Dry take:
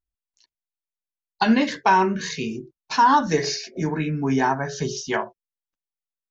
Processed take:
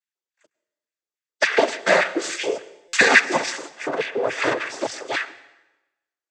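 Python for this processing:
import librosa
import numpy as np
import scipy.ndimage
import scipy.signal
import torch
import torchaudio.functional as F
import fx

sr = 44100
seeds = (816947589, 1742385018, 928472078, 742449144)

p1 = np.abs(x)
p2 = fx.high_shelf(p1, sr, hz=4100.0, db=7.5, at=(2.19, 3.25))
p3 = fx.filter_lfo_highpass(p2, sr, shape='square', hz=3.5, low_hz=400.0, high_hz=1900.0, q=3.1)
p4 = p3 + fx.echo_single(p3, sr, ms=102, db=-23.5, dry=0)
p5 = fx.noise_vocoder(p4, sr, seeds[0], bands=16)
p6 = fx.peak_eq(p5, sr, hz=2600.0, db=-3.0, octaves=0.91)
p7 = fx.rev_plate(p6, sr, seeds[1], rt60_s=1.0, hf_ratio=0.9, predelay_ms=105, drr_db=18.5)
p8 = fx.buffer_glitch(p7, sr, at_s=(2.88,), block=256, repeats=8)
y = p8 * librosa.db_to_amplitude(4.0)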